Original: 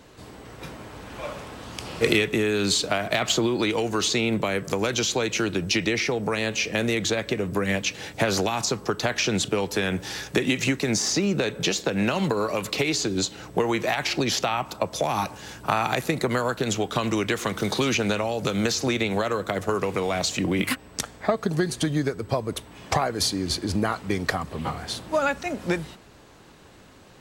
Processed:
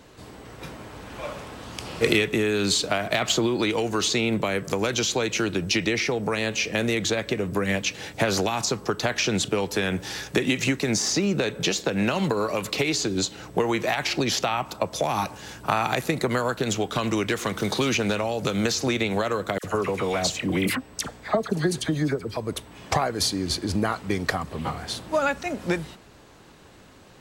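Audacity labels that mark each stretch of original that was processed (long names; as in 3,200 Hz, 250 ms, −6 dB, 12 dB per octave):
16.640000	18.370000	hard clipping −16 dBFS
19.580000	22.370000	all-pass dispersion lows, late by 61 ms, half as late at 1,400 Hz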